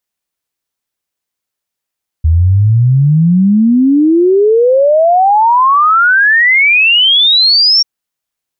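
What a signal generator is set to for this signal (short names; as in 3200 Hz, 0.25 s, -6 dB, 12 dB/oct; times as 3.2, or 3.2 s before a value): log sweep 77 Hz -> 5600 Hz 5.59 s -5 dBFS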